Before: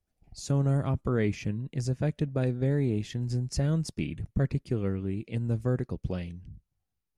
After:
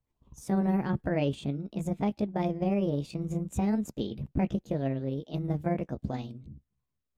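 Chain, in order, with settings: rotating-head pitch shifter +5.5 st; treble shelf 5.8 kHz -10 dB

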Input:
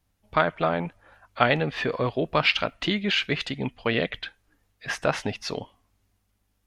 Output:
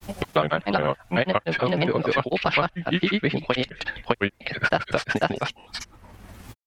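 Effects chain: granulator 100 ms, grains 20 per s, spray 404 ms, pitch spread up and down by 3 st; three bands compressed up and down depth 100%; trim +3 dB

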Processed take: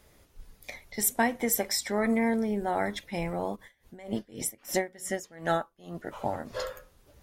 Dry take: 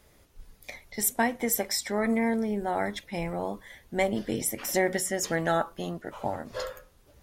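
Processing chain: 3.55–5.94 s: logarithmic tremolo 4.4 Hz -> 2 Hz, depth 24 dB

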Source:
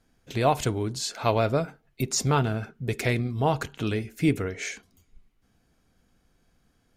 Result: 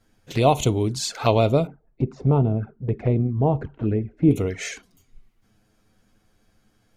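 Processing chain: 1.67–4.31 s: Bessel low-pass 670 Hz, order 2; touch-sensitive flanger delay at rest 9.8 ms, full sweep at -23.5 dBFS; trim +6.5 dB

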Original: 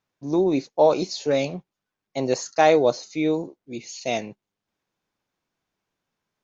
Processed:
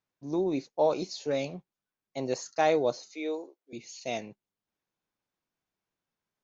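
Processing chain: 3.11–3.73 s: high-pass 350 Hz 24 dB/octave; trim -8 dB

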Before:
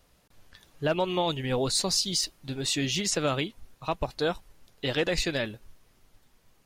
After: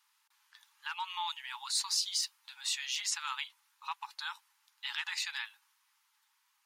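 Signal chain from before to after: brick-wall FIR high-pass 810 Hz; trim -5 dB

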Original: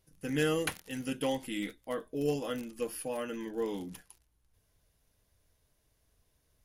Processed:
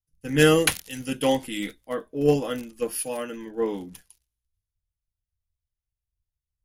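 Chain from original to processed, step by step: three bands expanded up and down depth 100%; trim +7 dB

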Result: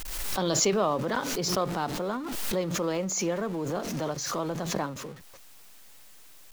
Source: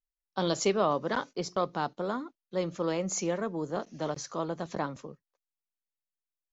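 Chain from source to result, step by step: jump at every zero crossing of -42.5 dBFS; swell ahead of each attack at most 28 dB/s

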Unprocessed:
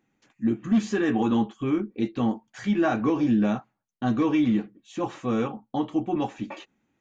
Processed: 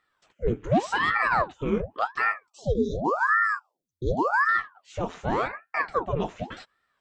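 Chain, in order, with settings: 2.48–4.49 s: brick-wall FIR band-stop 450–3400 Hz; ring modulator with a swept carrier 840 Hz, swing 90%, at 0.88 Hz; trim +2 dB

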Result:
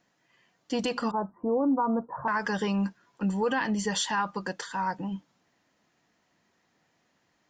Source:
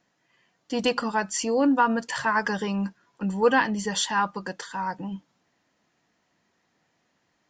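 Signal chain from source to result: 1.11–2.28 s: steep low-pass 1.2 kHz 48 dB/octave; peak limiter -19 dBFS, peak gain reduction 9.5 dB

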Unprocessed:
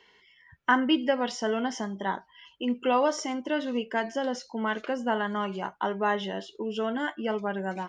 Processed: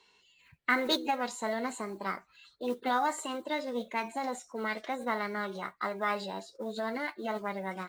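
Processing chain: modulation noise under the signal 30 dB; formant shift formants +5 st; trim -5 dB

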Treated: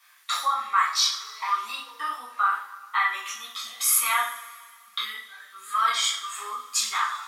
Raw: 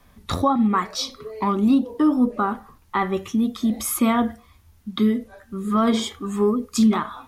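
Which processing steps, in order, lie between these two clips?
Chebyshev high-pass 1.3 kHz, order 3; two-slope reverb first 0.45 s, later 2.1 s, from -19 dB, DRR -5.5 dB

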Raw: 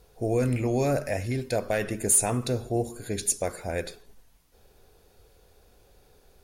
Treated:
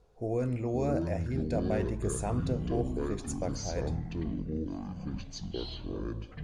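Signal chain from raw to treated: FFT filter 1.2 kHz 0 dB, 1.7 kHz -6 dB, 4.2 kHz -8 dB, 7.3 kHz -8 dB, 15 kHz -28 dB; ever faster or slower copies 419 ms, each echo -7 st, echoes 3; trim -6 dB

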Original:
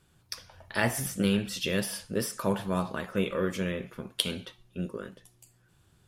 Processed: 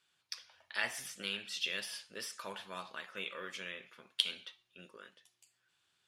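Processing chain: band-pass filter 3.2 kHz, Q 0.89; trim -2 dB

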